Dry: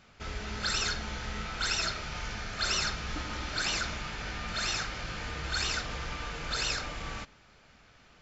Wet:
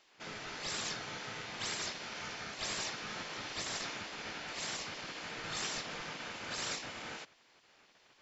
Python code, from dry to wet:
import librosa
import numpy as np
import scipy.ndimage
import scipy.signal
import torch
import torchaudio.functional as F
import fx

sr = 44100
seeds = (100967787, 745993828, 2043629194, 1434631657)

y = fx.spec_gate(x, sr, threshold_db=-10, keep='weak')
y = y * librosa.db_to_amplitude(-2.5)